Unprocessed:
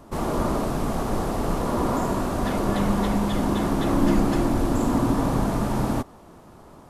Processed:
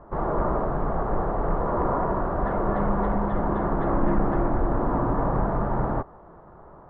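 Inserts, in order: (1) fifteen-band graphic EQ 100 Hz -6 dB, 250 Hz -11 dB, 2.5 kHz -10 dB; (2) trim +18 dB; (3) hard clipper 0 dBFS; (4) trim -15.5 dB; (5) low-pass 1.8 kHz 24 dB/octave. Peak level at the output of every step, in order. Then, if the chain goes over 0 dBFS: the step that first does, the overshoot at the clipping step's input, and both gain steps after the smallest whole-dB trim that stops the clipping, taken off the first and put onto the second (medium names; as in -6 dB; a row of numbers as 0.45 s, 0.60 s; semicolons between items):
-11.5 dBFS, +6.5 dBFS, 0.0 dBFS, -15.5 dBFS, -14.5 dBFS; step 2, 6.5 dB; step 2 +11 dB, step 4 -8.5 dB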